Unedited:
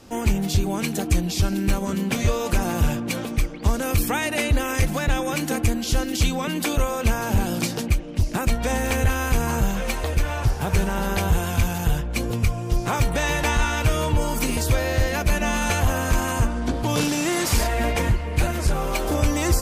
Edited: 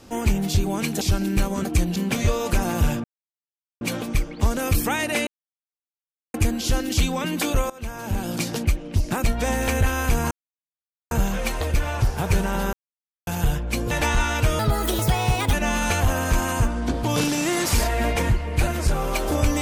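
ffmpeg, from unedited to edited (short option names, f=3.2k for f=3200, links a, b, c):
-filter_complex "[0:a]asplit=14[a][b][c][d][e][f][g][h][i][j][k][l][m][n];[a]atrim=end=1.012[o];[b]atrim=start=1.318:end=1.962[p];[c]atrim=start=1.008:end=1.322[q];[d]atrim=start=1.958:end=3.04,asetpts=PTS-STARTPTS,afade=t=out:st=1.078:d=0.004:c=hsin,apad=pad_dur=0.77[r];[e]atrim=start=3.04:end=4.5,asetpts=PTS-STARTPTS,afade=t=in:d=0.004:c=hsin,afade=t=out:st=1.456:d=0.004:c=hsin[s];[f]atrim=start=4.5:end=5.57,asetpts=PTS-STARTPTS,volume=0[t];[g]atrim=start=5.57:end=6.93,asetpts=PTS-STARTPTS,afade=t=in:d=0.004:c=hsin,afade=t=out:st=1.356:d=0.004:c=hsin:silence=0.105925[u];[h]atrim=start=6.93:end=9.54,asetpts=PTS-STARTPTS,afade=t=in:d=0.86:silence=0.105925,afade=t=out:st=2.606:d=0.004:c=hsin,apad=pad_dur=0.8[v];[i]atrim=start=9.54:end=11.16,asetpts=PTS-STARTPTS,afade=t=in:d=0.004:c=hsin,afade=t=out:st=1.616:d=0.004:c=hsin[w];[j]atrim=start=11.16:end=11.7,asetpts=PTS-STARTPTS,volume=0[x];[k]atrim=start=11.7:end=12.342,asetpts=PTS-STARTPTS,afade=t=in:d=0.004:c=hsin[y];[l]atrim=start=13.328:end=14.014[z];[m]atrim=start=14.01:end=15.33,asetpts=PTS-STARTPTS,asetrate=61740,aresample=44100[aa];[n]atrim=start=15.326[ab];[o][p]acrossfade=d=0.004:c1=hsin:c2=hsin[ac];[ac][q]acrossfade=d=0.004:c1=hsin:c2=hsin[ad];[r][s][t][u][v][w][x][y]concat=n=8:v=0:a=1[ae];[ad][ae]acrossfade=d=0.004:c1=hsin:c2=hsin[af];[af][z]acrossfade=d=0.004:c1=hsin:c2=hsin[ag];[ag][aa]acrossfade=d=0.004:c1=hsin:c2=hsin[ah];[ah][ab]acrossfade=d=0.004:c1=hsin:c2=hsin"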